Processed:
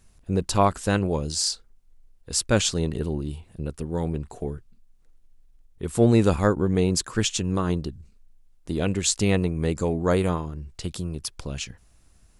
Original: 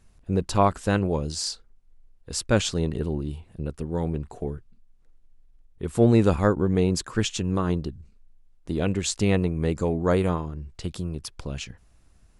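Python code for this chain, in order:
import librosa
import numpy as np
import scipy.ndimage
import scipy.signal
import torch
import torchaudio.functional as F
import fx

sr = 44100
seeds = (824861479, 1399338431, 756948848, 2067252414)

y = fx.high_shelf(x, sr, hz=4400.0, db=7.5)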